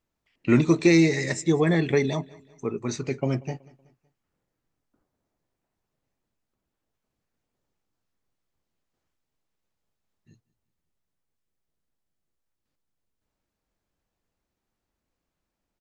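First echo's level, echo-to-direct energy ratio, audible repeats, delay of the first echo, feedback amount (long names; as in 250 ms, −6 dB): −23.0 dB, −22.0 dB, 2, 187 ms, 43%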